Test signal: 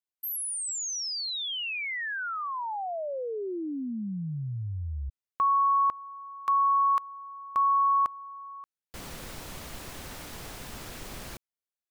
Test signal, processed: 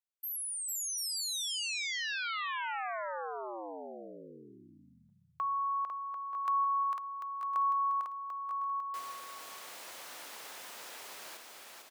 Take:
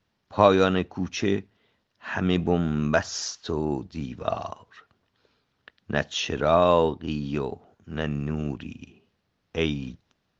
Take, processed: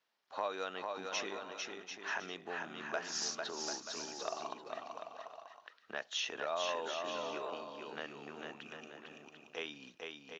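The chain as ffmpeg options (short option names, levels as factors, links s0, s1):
-filter_complex "[0:a]acompressor=threshold=0.0447:ratio=3:attack=6.4:release=233:knee=1:detection=rms,highpass=600,asplit=2[s0][s1];[s1]aecho=0:1:450|742.5|932.6|1056|1137:0.631|0.398|0.251|0.158|0.1[s2];[s0][s2]amix=inputs=2:normalize=0,volume=0.562"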